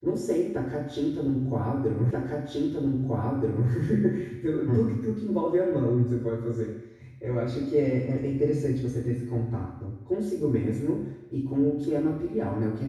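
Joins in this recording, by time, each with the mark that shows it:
2.11 s: repeat of the last 1.58 s

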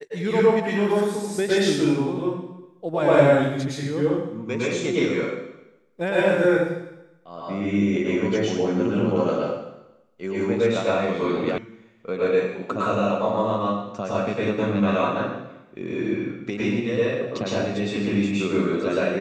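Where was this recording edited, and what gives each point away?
11.58 s: sound stops dead

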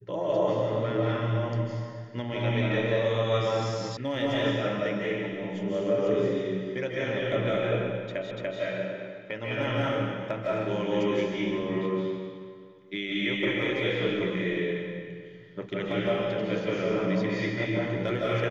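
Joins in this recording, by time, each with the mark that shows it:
3.97 s: sound stops dead
8.31 s: repeat of the last 0.29 s

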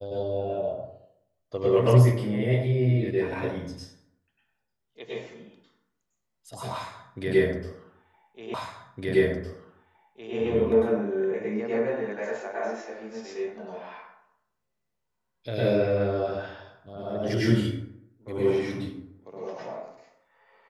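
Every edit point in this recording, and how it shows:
8.54 s: repeat of the last 1.81 s

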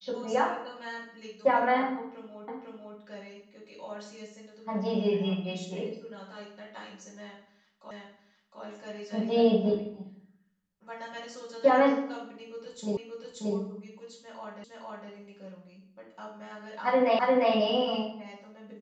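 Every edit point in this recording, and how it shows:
2.48 s: repeat of the last 0.5 s
7.91 s: repeat of the last 0.71 s
12.97 s: repeat of the last 0.58 s
14.64 s: repeat of the last 0.46 s
17.19 s: repeat of the last 0.35 s

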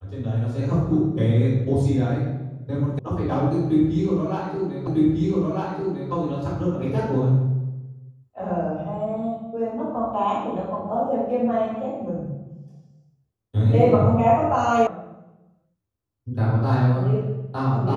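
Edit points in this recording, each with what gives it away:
2.99 s: sound stops dead
4.87 s: repeat of the last 1.25 s
14.87 s: sound stops dead

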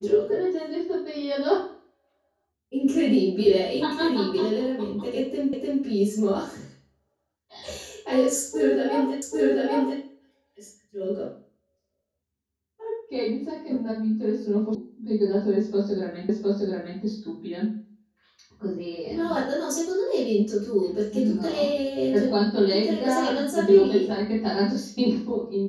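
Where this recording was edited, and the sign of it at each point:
5.53 s: repeat of the last 0.3 s
9.22 s: repeat of the last 0.79 s
14.75 s: sound stops dead
16.29 s: repeat of the last 0.71 s

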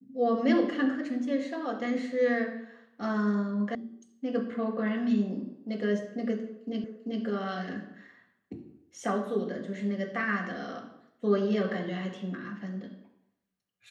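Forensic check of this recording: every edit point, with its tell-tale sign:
3.75 s: sound stops dead
6.84 s: repeat of the last 0.39 s

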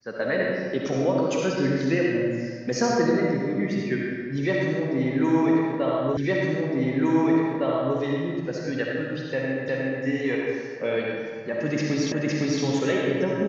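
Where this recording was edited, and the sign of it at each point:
6.17 s: repeat of the last 1.81 s
9.68 s: repeat of the last 0.36 s
12.12 s: repeat of the last 0.51 s

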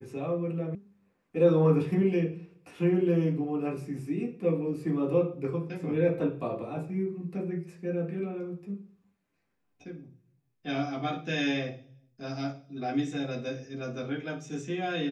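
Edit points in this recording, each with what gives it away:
0.75 s: sound stops dead

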